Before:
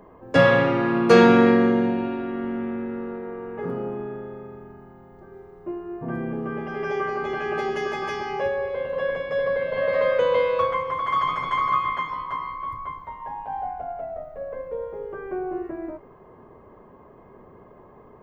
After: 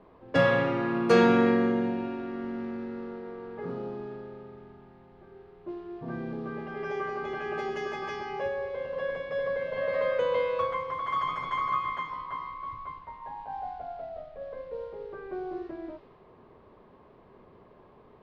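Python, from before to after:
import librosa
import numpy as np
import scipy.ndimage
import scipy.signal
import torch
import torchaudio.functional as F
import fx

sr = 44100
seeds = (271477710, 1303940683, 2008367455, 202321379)

y = fx.dmg_noise_band(x, sr, seeds[0], low_hz=630.0, high_hz=4600.0, level_db=-61.0)
y = fx.env_lowpass(y, sr, base_hz=1600.0, full_db=-20.5)
y = y * 10.0 ** (-6.5 / 20.0)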